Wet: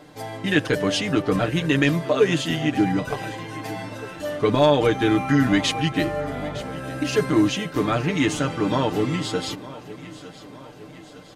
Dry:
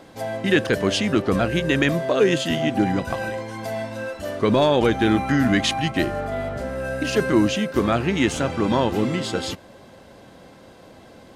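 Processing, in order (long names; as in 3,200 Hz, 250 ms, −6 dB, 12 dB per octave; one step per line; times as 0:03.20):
comb filter 6.7 ms, depth 73%
on a send: repeating echo 909 ms, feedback 55%, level −17 dB
on the sum: level −2.5 dB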